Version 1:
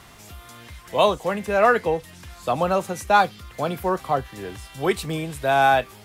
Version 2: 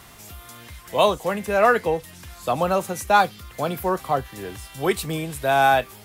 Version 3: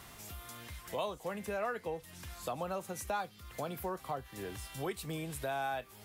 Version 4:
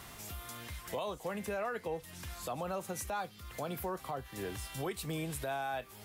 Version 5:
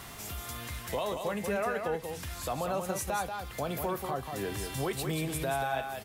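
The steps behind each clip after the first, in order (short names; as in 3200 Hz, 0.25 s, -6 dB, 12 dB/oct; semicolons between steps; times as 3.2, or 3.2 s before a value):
high shelf 11000 Hz +11 dB
compressor 3:1, threshold -32 dBFS, peak gain reduction 15 dB; gain -6 dB
limiter -31 dBFS, peak gain reduction 6.5 dB; gain +2.5 dB
echo 0.185 s -6 dB; reverb RT60 0.50 s, pre-delay 7 ms, DRR 16.5 dB; gain +4.5 dB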